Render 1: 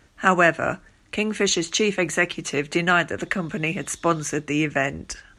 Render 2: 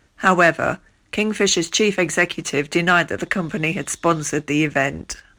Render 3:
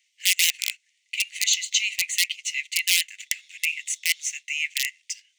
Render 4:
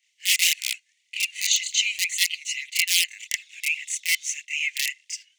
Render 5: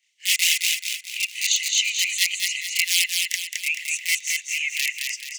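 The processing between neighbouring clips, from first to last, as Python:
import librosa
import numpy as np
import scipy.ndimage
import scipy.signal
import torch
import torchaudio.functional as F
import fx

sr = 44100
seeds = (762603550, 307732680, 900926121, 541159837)

y1 = fx.leveller(x, sr, passes=1)
y2 = fx.peak_eq(y1, sr, hz=11000.0, db=-10.0, octaves=0.4)
y2 = (np.mod(10.0 ** (7.5 / 20.0) * y2 + 1.0, 2.0) - 1.0) / 10.0 ** (7.5 / 20.0)
y2 = scipy.signal.sosfilt(scipy.signal.cheby1(6, 3, 2000.0, 'highpass', fs=sr, output='sos'), y2)
y3 = fx.chorus_voices(y2, sr, voices=2, hz=0.9, base_ms=28, depth_ms=1.4, mix_pct=65)
y3 = F.gain(torch.from_numpy(y3), 3.0).numpy()
y4 = fx.echo_feedback(y3, sr, ms=216, feedback_pct=43, wet_db=-3.5)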